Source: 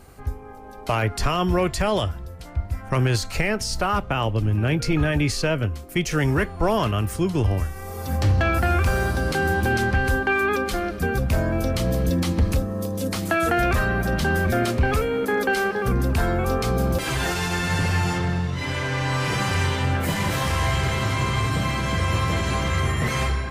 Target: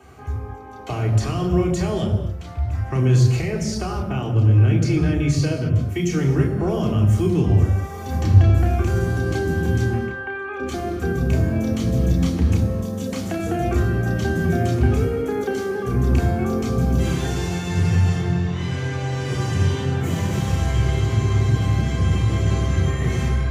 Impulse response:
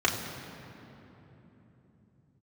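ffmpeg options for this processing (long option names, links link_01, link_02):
-filter_complex "[0:a]asettb=1/sr,asplit=3[link_01][link_02][link_03];[link_01]atrim=end=9.904[link_04];[link_02]atrim=start=9.9:end=10.6,asetpts=PTS-STARTPTS,afade=type=in:duration=0.004:curve=qsin,afade=type=out:start_time=0.696:duration=0.004:curve=qsin,acrossover=split=520 3000:gain=0.0891 1 0.0708[link_05][link_06][link_07];[link_05][link_06][link_07]amix=inputs=3:normalize=0[link_08];[link_03]atrim=start=10.596[link_09];[link_04][link_08]acrossfade=duration=0.004:curve1=hsin:curve2=qsin[link_10];[link_10][link_09]acrossfade=duration=0.004:curve1=qsin:curve2=hsin,acrossover=split=500|5300[link_11][link_12][link_13];[link_12]acompressor=threshold=-38dB:ratio=4[link_14];[link_11][link_14][link_13]amix=inputs=3:normalize=0[link_15];[1:a]atrim=start_sample=2205,afade=type=out:start_time=0.33:duration=0.01,atrim=end_sample=14994[link_16];[link_15][link_16]afir=irnorm=-1:irlink=0,volume=-9.5dB"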